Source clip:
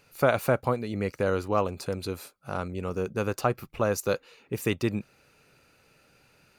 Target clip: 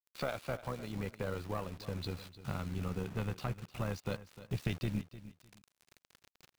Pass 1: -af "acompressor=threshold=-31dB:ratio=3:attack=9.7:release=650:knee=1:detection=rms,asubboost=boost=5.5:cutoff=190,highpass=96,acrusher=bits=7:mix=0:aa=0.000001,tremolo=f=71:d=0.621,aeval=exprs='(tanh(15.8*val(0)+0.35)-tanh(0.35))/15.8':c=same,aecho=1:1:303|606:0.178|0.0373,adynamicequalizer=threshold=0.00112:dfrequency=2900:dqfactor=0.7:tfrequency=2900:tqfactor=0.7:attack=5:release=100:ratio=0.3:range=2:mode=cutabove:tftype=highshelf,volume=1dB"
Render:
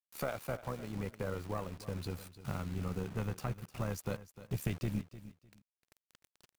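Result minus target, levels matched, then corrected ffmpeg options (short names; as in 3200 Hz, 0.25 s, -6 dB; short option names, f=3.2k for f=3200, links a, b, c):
4000 Hz band -4.0 dB
-af "acompressor=threshold=-31dB:ratio=3:attack=9.7:release=650:knee=1:detection=rms,lowpass=f=3.9k:t=q:w=2.5,asubboost=boost=5.5:cutoff=190,highpass=96,acrusher=bits=7:mix=0:aa=0.000001,tremolo=f=71:d=0.621,aeval=exprs='(tanh(15.8*val(0)+0.35)-tanh(0.35))/15.8':c=same,aecho=1:1:303|606:0.178|0.0373,adynamicequalizer=threshold=0.00112:dfrequency=2900:dqfactor=0.7:tfrequency=2900:tqfactor=0.7:attack=5:release=100:ratio=0.3:range=2:mode=cutabove:tftype=highshelf,volume=1dB"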